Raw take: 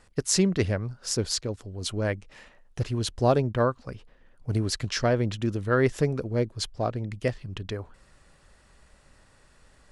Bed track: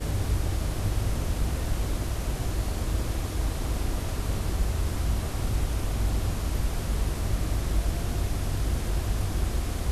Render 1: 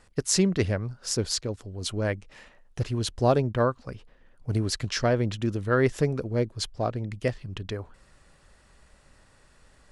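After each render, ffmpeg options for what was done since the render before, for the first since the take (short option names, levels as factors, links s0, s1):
-af anull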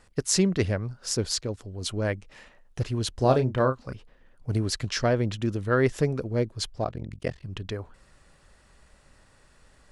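-filter_complex "[0:a]asettb=1/sr,asplit=3[s0][s1][s2];[s0]atrim=end=3.144[s3];[s1]atrim=start=3.14:end=3.93,asetpts=PTS-STARTPTS,afade=t=in:d=0.004:c=qsin,afade=t=out:st=0.786:d=0.004:c=qsin,asplit=2[s4][s5];[s5]adelay=31,volume=0.422[s6];[s4][s6]amix=inputs=2:normalize=0,atrim=end_sample=34839[s7];[s2]atrim=start=3.926[s8];[s3][s7]acrossfade=d=0.004:c1=hsin:c2=qsin[s9];[s9][s8]acrossfade=d=0.004:c1=qsin:c2=hsin,asettb=1/sr,asplit=3[s10][s11][s12];[s10]atrim=end=6.844[s13];[s11]atrim=start=6.84:end=7.44,asetpts=PTS-STARTPTS,afade=t=in:d=0.004:c=qsin,afade=t=out:st=0.596:d=0.004:c=qsin,tremolo=f=44:d=1[s14];[s12]atrim=start=7.436[s15];[s13][s14]acrossfade=d=0.004:c1=hsin:c2=qsin[s16];[s16][s15]acrossfade=d=0.004:c1=qsin:c2=hsin"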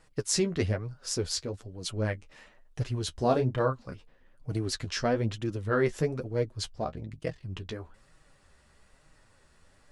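-af "flanger=delay=6.2:depth=7.2:regen=24:speed=1.1:shape=sinusoidal"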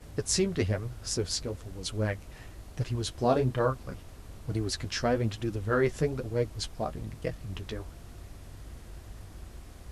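-filter_complex "[1:a]volume=0.126[s0];[0:a][s0]amix=inputs=2:normalize=0"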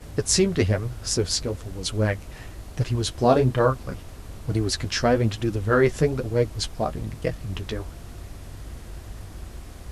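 -af "volume=2.24"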